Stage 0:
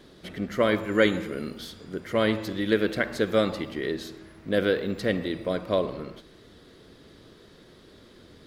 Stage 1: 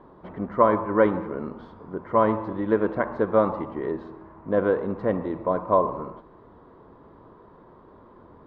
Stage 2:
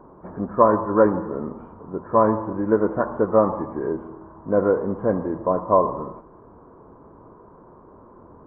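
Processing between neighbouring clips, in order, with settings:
resonant low-pass 990 Hz, resonance Q 6.1
knee-point frequency compression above 1.2 kHz 1.5:1; Savitzky-Golay filter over 41 samples; trim +3 dB

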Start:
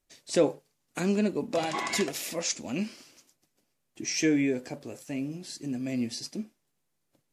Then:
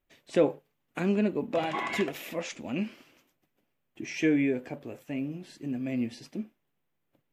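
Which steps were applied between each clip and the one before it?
high-order bell 6.9 kHz -14 dB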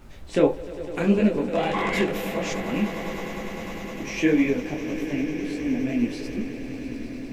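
echo with a slow build-up 101 ms, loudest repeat 8, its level -16.5 dB; added noise brown -46 dBFS; detune thickener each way 55 cents; trim +8.5 dB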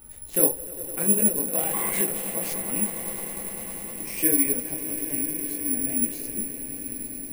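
careless resampling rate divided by 4×, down none, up zero stuff; trim -7.5 dB

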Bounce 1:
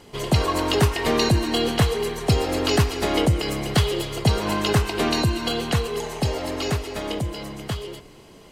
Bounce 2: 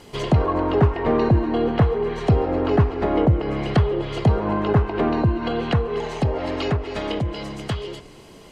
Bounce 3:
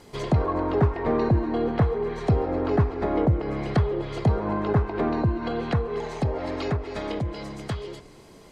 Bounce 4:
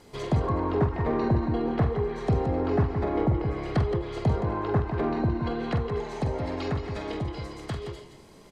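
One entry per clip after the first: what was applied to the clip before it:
low-pass that closes with the level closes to 1.2 kHz, closed at -19.5 dBFS; trim +2.5 dB
peaking EQ 2.9 kHz -8.5 dB 0.25 oct; trim -4 dB
multi-tap echo 46/171/172 ms -7.5/-8.5/-16.5 dB; endings held to a fixed fall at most 140 dB/s; trim -3.5 dB

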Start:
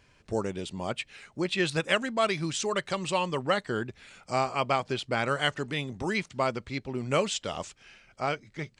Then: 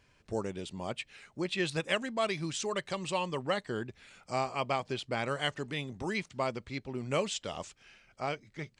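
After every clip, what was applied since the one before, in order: dynamic bell 1.4 kHz, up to -5 dB, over -45 dBFS, Q 4.9; trim -4.5 dB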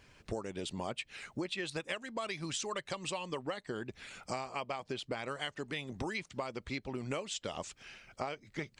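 harmonic-percussive split harmonic -7 dB; compression 12:1, threshold -43 dBFS, peak gain reduction 18 dB; trim +8.5 dB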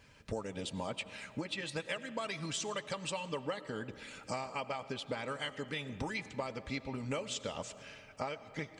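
comb of notches 360 Hz; reverberation RT60 2.5 s, pre-delay 55 ms, DRR 13.5 dB; trim +1 dB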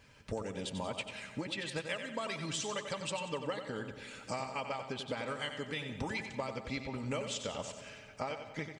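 feedback delay 92 ms, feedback 46%, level -9 dB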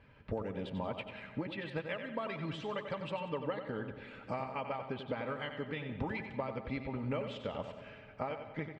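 distance through air 450 m; trim +2 dB

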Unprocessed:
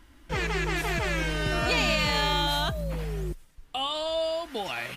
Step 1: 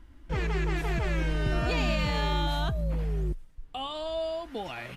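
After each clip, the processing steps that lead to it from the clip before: tilt EQ -2 dB/octave; trim -4.5 dB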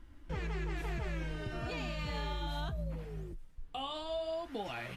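compression, threshold -32 dBFS, peak gain reduction 9 dB; flange 0.63 Hz, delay 8.5 ms, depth 7.2 ms, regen -48%; trim +1.5 dB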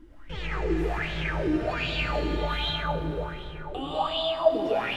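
algorithmic reverb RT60 3.8 s, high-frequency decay 0.65×, pre-delay 50 ms, DRR -4 dB; sweeping bell 1.3 Hz 300–3600 Hz +17 dB

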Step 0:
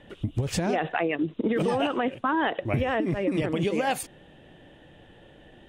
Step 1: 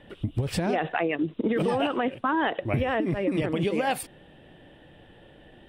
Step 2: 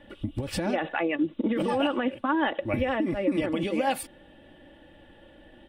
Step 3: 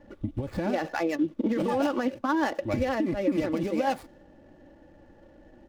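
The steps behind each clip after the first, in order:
peaking EQ 6.6 kHz -11 dB 0.31 oct
comb 3.5 ms, depth 59%; trim -2 dB
median filter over 15 samples; tape noise reduction on one side only decoder only

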